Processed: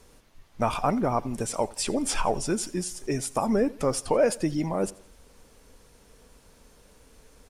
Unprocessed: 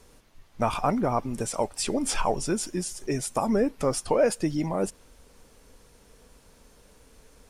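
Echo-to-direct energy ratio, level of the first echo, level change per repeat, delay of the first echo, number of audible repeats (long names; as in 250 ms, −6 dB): −21.0 dB, −22.0 dB, −7.0 dB, 86 ms, 2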